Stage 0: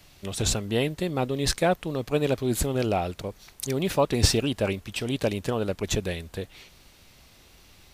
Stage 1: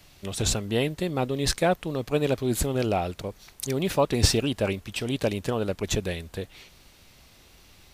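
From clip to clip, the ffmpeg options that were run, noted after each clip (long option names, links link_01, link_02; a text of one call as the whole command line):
ffmpeg -i in.wav -af anull out.wav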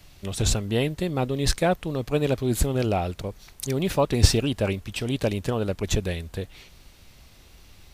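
ffmpeg -i in.wav -af "lowshelf=frequency=110:gain=8" out.wav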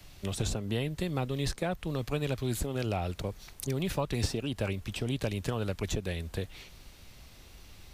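ffmpeg -i in.wav -filter_complex "[0:a]acrossover=split=150|1000[link_01][link_02][link_03];[link_01]acompressor=threshold=-33dB:ratio=4[link_04];[link_02]acompressor=threshold=-32dB:ratio=4[link_05];[link_03]acompressor=threshold=-37dB:ratio=4[link_06];[link_04][link_05][link_06]amix=inputs=3:normalize=0,volume=-1dB" out.wav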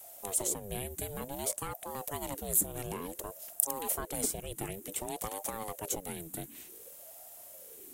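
ffmpeg -i in.wav -af "aexciter=amount=14.2:drive=3.3:freq=7100,aeval=exprs='val(0)*sin(2*PI*460*n/s+460*0.5/0.55*sin(2*PI*0.55*n/s))':channel_layout=same,volume=-5dB" out.wav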